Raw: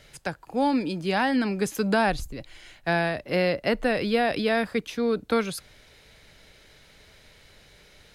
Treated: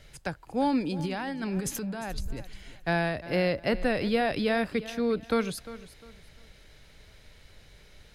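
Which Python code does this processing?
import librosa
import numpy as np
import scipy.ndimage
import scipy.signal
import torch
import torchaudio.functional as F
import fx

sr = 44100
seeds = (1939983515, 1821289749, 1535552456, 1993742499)

y = fx.low_shelf(x, sr, hz=110.0, db=10.0)
y = fx.over_compress(y, sr, threshold_db=-29.0, ratio=-1.0, at=(0.99, 2.31))
y = fx.echo_feedback(y, sr, ms=351, feedback_pct=29, wet_db=-16.0)
y = y * librosa.db_to_amplitude(-3.5)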